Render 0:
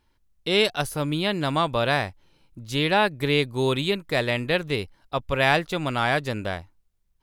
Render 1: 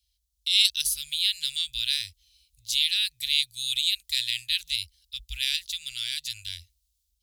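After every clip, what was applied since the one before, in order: HPF 52 Hz 24 dB/oct; AGC gain up to 7.5 dB; inverse Chebyshev band-stop 190–980 Hz, stop band 70 dB; gain +4 dB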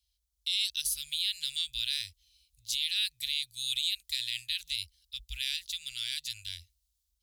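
limiter -14.5 dBFS, peak gain reduction 9.5 dB; gain -4 dB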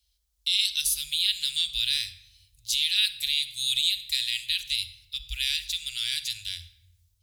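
shoebox room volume 3900 m³, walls furnished, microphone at 1.4 m; gain +5.5 dB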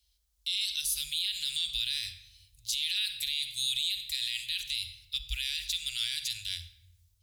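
limiter -20 dBFS, peak gain reduction 10 dB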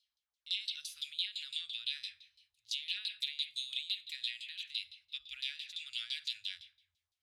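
LFO band-pass saw down 5.9 Hz 720–4400 Hz

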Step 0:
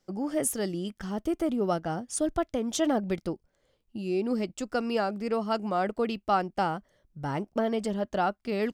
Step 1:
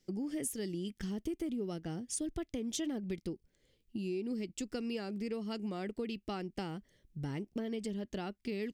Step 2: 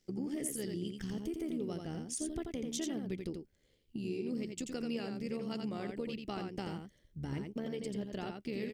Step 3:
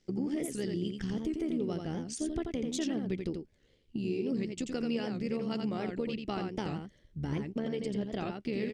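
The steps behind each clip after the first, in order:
band shelf 910 Hz -12.5 dB; compressor 4:1, threshold -37 dBFS, peak gain reduction 11.5 dB; gain +1 dB
AM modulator 74 Hz, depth 40%; on a send: echo 86 ms -5 dB; on the sum: gain +1 dB
air absorption 66 m; record warp 78 rpm, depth 160 cents; gain +5 dB

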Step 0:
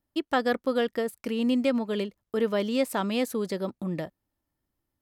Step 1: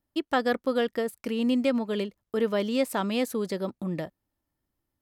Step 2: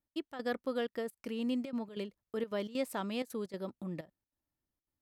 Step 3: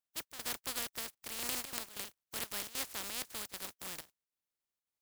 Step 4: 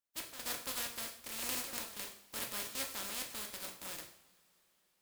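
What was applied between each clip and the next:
nothing audible
step gate "x.xx.xxxxx" 191 bpm -12 dB; gain -9 dB
spectral contrast lowered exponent 0.14; gain -4 dB
reverb, pre-delay 3 ms, DRR 1 dB; gain -2.5 dB

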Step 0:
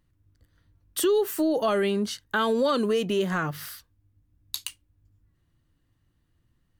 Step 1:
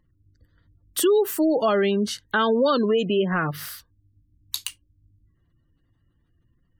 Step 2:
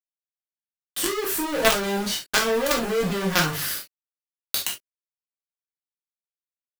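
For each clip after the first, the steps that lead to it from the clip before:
spectral gate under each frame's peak -30 dB strong; gain +3.5 dB
companded quantiser 2-bit; reverb, pre-delay 3 ms, DRR -2 dB; gain -3.5 dB

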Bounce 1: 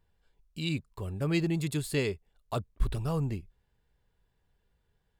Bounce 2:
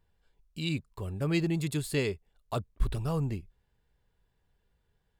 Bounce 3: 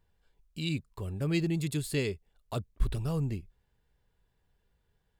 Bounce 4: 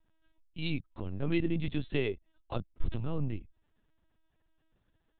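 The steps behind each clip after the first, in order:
nothing audible
dynamic EQ 980 Hz, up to -6 dB, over -46 dBFS, Q 0.8
LPC vocoder at 8 kHz pitch kept

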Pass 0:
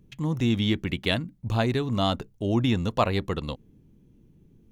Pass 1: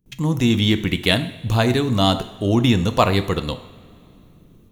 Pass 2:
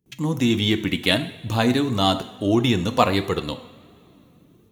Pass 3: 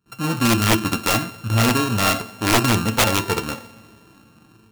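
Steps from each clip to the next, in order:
gate with hold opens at -49 dBFS; high shelf 6800 Hz +11 dB; reverb, pre-delay 3 ms, DRR 9.5 dB; gain +6.5 dB
HPF 94 Hz; flange 1.5 Hz, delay 2.2 ms, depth 2 ms, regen +51%; gain +2.5 dB
sample sorter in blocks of 32 samples; resonator 110 Hz, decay 0.2 s, harmonics all, mix 70%; wrapped overs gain 16.5 dB; gain +7.5 dB

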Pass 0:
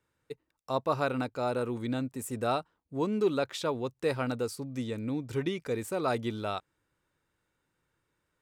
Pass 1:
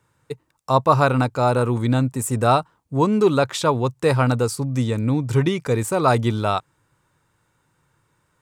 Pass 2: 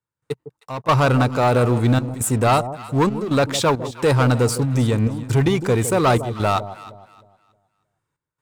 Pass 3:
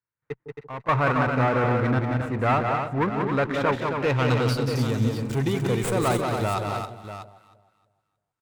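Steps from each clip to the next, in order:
graphic EQ 125/1000/8000 Hz +10/+7/+6 dB; gain +8.5 dB
sample leveller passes 3; step gate ".xx.xxxxx.xxxx" 68 bpm -12 dB; echo with dull and thin repeats by turns 0.156 s, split 870 Hz, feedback 52%, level -11 dB; gain -7 dB
low-pass sweep 2000 Hz -> 11000 Hz, 3.83–5.29; tapped delay 0.183/0.27/0.642 s -5/-6.5/-11.5 dB; running maximum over 3 samples; gain -7.5 dB

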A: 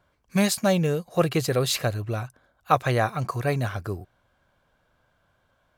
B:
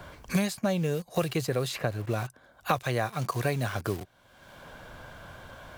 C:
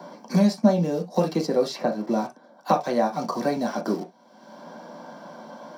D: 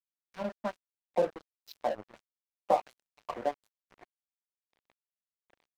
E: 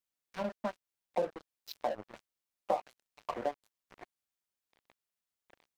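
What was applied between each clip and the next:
notch 1300 Hz, Q 21; in parallel at -7 dB: requantised 6-bit, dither none; on the sum: three-band squash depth 100%; gain -8.5 dB
steep high-pass 200 Hz 36 dB/oct; reverb, pre-delay 3 ms, DRR 2 dB; gain -6.5 dB
high shelf 5900 Hz -11 dB; LFO band-pass sine 1.4 Hz 520–6900 Hz; crossover distortion -38.5 dBFS
compressor 2:1, threshold -40 dBFS, peak gain reduction 11.5 dB; gain +4.5 dB

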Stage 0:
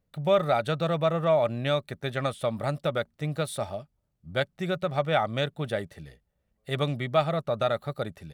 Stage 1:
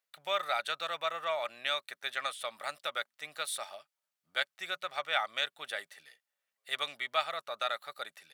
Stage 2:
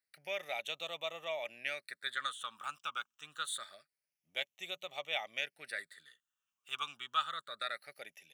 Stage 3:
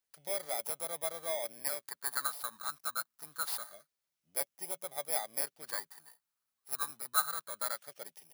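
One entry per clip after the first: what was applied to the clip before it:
HPF 1400 Hz 12 dB/oct; gain +1.5 dB
phaser stages 8, 0.26 Hz, lowest notch 570–1500 Hz; gain -1 dB
FFT order left unsorted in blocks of 16 samples; gain +3 dB

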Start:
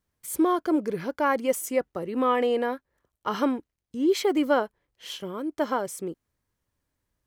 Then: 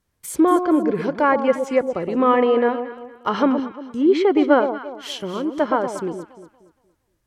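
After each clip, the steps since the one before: treble ducked by the level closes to 2600 Hz, closed at -23 dBFS; echo with dull and thin repeats by turns 0.117 s, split 970 Hz, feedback 56%, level -7 dB; gain +6.5 dB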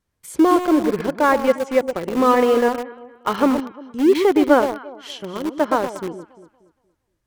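high shelf 9600 Hz -4.5 dB; in parallel at -4 dB: sample gate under -19 dBFS; on the sum: gain -3 dB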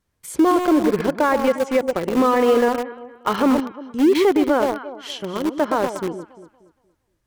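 maximiser +10 dB; gain -7.5 dB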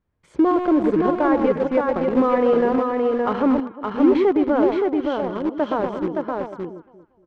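tape spacing loss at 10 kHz 34 dB; echo 0.569 s -3.5 dB

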